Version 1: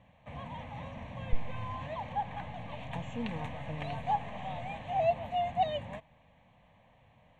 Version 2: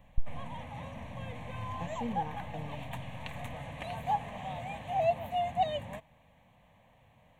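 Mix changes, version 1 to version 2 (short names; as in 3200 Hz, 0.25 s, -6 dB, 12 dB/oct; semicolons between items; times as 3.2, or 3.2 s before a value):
speech: entry -1.15 s; master: remove LPF 5300 Hz 12 dB/oct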